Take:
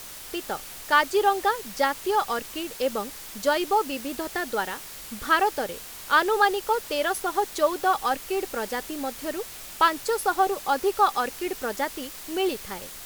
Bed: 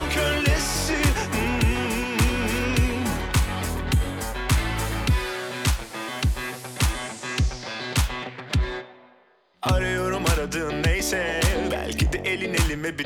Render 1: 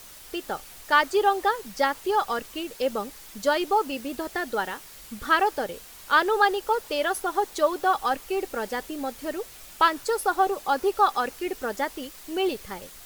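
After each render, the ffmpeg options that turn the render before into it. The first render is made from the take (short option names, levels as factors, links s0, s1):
-af "afftdn=nr=6:nf=-41"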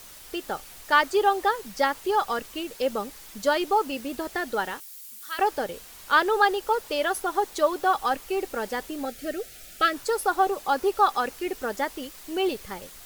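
-filter_complex "[0:a]asettb=1/sr,asplit=3[s0][s1][s2];[s0]atrim=end=4.804[s3];[s1]atrim=start=4.8:end=5.39,asetpts=PTS-STARTPTS,afade=t=in:d=0.004:c=qsin,afade=t=out:st=0.586:d=0.004:c=qsin,aderivative[s4];[s2]atrim=start=5.386[s5];[s3][s4]acrossfade=d=0.004:c1=hsin:c2=qsin[s6];[s6][s5]acrossfade=d=0.004:c1=qsin:c2=hsin,asettb=1/sr,asplit=3[s7][s8][s9];[s7]atrim=end=9.054[s10];[s8]atrim=start=9.05:end=9.94,asetpts=PTS-STARTPTS,afade=t=in:d=0.004:c=qsin,afade=t=out:st=0.886:d=0.004:c=qsin,asuperstop=centerf=990:order=8:qfactor=2.1[s11];[s9]atrim=start=9.936[s12];[s10][s11]acrossfade=d=0.004:c1=hsin:c2=qsin[s13];[s13][s12]acrossfade=d=0.004:c1=qsin:c2=hsin"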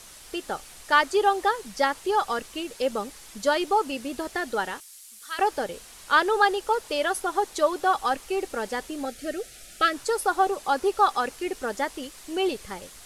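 -af "lowpass=f=11000:w=0.5412,lowpass=f=11000:w=1.3066,highshelf=f=7900:g=4.5"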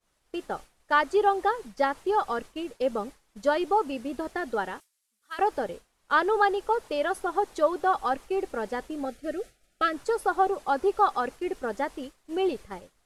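-af "agate=range=0.0224:threshold=0.02:ratio=3:detection=peak,highshelf=f=2300:g=-12"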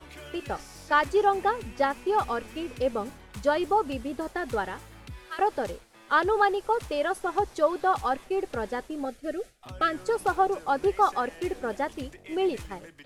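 -filter_complex "[1:a]volume=0.0841[s0];[0:a][s0]amix=inputs=2:normalize=0"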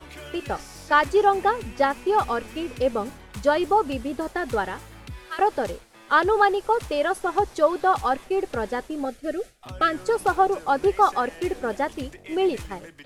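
-af "volume=1.58"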